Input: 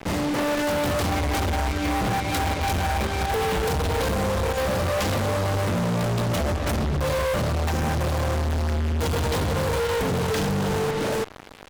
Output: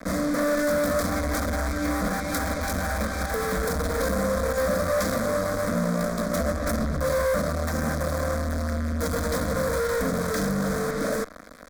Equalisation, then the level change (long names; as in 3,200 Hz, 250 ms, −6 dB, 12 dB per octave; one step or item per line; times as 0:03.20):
phaser with its sweep stopped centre 570 Hz, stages 8
+2.0 dB